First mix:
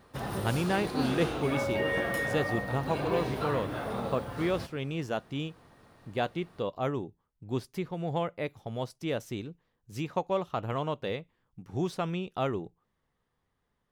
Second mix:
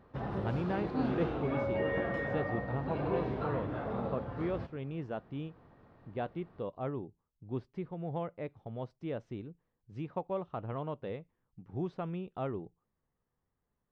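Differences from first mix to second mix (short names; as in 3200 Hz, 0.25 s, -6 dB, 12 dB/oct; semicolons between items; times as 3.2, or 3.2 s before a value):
speech -4.0 dB; master: add tape spacing loss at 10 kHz 38 dB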